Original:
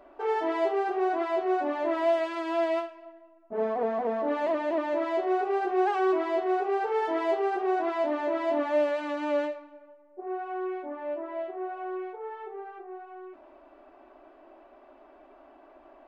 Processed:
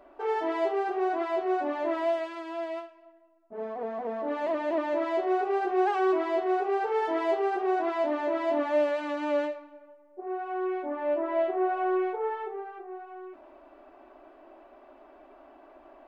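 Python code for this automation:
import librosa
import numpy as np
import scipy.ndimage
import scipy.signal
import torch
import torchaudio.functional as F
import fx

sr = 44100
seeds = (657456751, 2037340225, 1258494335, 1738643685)

y = fx.gain(x, sr, db=fx.line((1.91, -1.0), (2.55, -7.5), (3.62, -7.5), (4.75, 0.0), (10.35, 0.0), (11.44, 8.0), (12.25, 8.0), (12.68, 1.0)))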